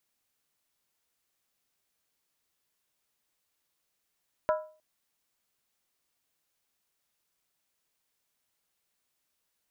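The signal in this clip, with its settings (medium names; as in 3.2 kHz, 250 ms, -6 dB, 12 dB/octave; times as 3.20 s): skin hit length 0.31 s, lowest mode 621 Hz, decay 0.40 s, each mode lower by 5 dB, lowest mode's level -21 dB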